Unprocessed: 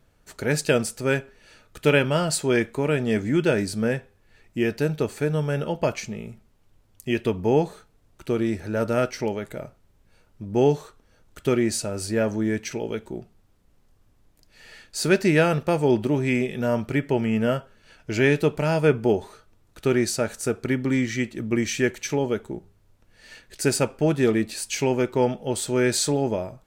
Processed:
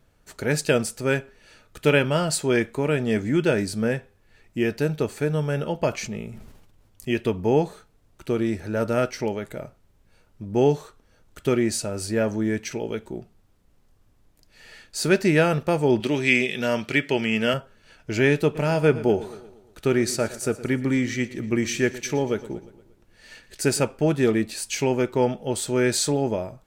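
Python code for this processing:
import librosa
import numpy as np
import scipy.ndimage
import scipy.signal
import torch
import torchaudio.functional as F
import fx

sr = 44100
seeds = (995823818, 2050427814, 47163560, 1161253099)

y = fx.sustainer(x, sr, db_per_s=43.0, at=(5.91, 7.09))
y = fx.weighting(y, sr, curve='D', at=(16.0, 17.54))
y = fx.echo_feedback(y, sr, ms=117, feedback_pct=54, wet_db=-17, at=(18.54, 23.8), fade=0.02)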